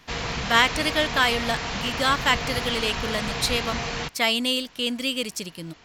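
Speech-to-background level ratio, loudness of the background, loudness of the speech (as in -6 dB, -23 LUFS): 5.0 dB, -29.0 LUFS, -24.0 LUFS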